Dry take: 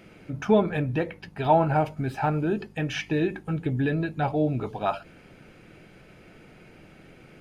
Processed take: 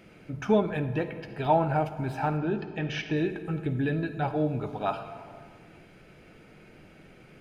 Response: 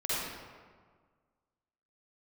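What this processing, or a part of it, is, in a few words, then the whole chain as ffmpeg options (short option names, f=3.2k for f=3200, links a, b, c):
compressed reverb return: -filter_complex "[0:a]asplit=2[a][b];[1:a]atrim=start_sample=2205[c];[b][c]afir=irnorm=-1:irlink=0,acompressor=threshold=-17dB:ratio=6,volume=-13.5dB[d];[a][d]amix=inputs=2:normalize=0,asettb=1/sr,asplit=3[e][f][g];[e]atrim=end=2.374[h];[f]atrim=start=2.37:end=3.17,asetpts=PTS-STARTPTS,afade=t=in:d=0.004:c=qsin,afade=t=out:st=0.796:d=0.004:c=qsin,lowpass=f=5.7k:w=0.5412,lowpass=f=5.7k:w=1.3066[i];[g]atrim=start=3.166[j];[h][i]acrossfade=d=0.004:c1=hsin:c2=qsin[k];[k][j]acrossfade=d=0.004:c1=qsin:c2=hsin,volume=-4dB"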